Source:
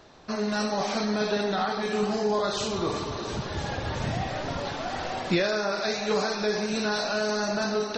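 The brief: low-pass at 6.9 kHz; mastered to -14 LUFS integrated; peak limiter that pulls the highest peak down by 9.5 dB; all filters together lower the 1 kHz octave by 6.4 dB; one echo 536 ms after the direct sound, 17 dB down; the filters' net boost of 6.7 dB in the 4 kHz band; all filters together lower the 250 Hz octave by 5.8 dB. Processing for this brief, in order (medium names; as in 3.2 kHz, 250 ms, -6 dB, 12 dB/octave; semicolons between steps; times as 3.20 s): low-pass 6.9 kHz; peaking EQ 250 Hz -7.5 dB; peaking EQ 1 kHz -9 dB; peaking EQ 4 kHz +8.5 dB; peak limiter -21.5 dBFS; delay 536 ms -17 dB; trim +16 dB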